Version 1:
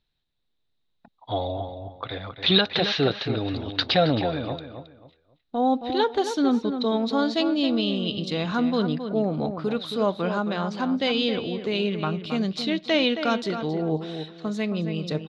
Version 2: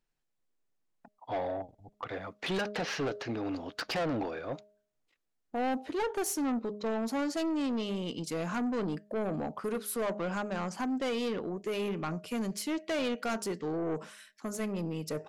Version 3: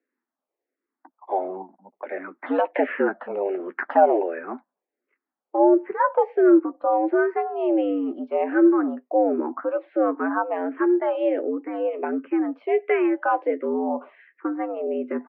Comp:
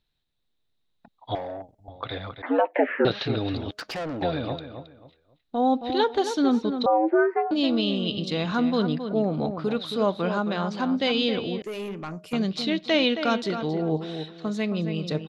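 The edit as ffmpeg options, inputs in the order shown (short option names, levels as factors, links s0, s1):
-filter_complex "[1:a]asplit=3[s0][s1][s2];[2:a]asplit=2[s3][s4];[0:a]asplit=6[s5][s6][s7][s8][s9][s10];[s5]atrim=end=1.352[s11];[s0]atrim=start=1.348:end=1.882[s12];[s6]atrim=start=1.878:end=2.422[s13];[s3]atrim=start=2.418:end=3.052[s14];[s7]atrim=start=3.048:end=3.712[s15];[s1]atrim=start=3.708:end=4.222[s16];[s8]atrim=start=4.218:end=6.862[s17];[s4]atrim=start=6.858:end=7.512[s18];[s9]atrim=start=7.508:end=11.622[s19];[s2]atrim=start=11.618:end=12.332[s20];[s10]atrim=start=12.328[s21];[s11][s12]acrossfade=d=0.004:c1=hsin:c2=hsin[s22];[s22][s13]acrossfade=d=0.004:c1=hsin:c2=hsin[s23];[s23][s14]acrossfade=d=0.004:c1=hsin:c2=hsin[s24];[s24][s15]acrossfade=d=0.004:c1=hsin:c2=hsin[s25];[s25][s16]acrossfade=d=0.004:c1=hsin:c2=hsin[s26];[s26][s17]acrossfade=d=0.004:c1=hsin:c2=hsin[s27];[s27][s18]acrossfade=d=0.004:c1=hsin:c2=hsin[s28];[s28][s19]acrossfade=d=0.004:c1=hsin:c2=hsin[s29];[s29][s20]acrossfade=d=0.004:c1=hsin:c2=hsin[s30];[s30][s21]acrossfade=d=0.004:c1=hsin:c2=hsin"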